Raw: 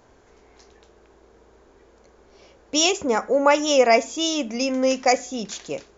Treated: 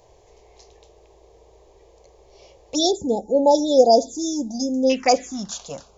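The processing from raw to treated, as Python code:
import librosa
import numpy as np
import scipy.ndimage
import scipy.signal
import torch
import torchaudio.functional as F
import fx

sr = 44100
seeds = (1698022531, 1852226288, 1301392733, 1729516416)

y = fx.env_phaser(x, sr, low_hz=240.0, high_hz=2000.0, full_db=-13.5)
y = fx.brickwall_bandstop(y, sr, low_hz=910.0, high_hz=3400.0, at=(2.75, 4.9))
y = y * librosa.db_to_amplitude(4.0)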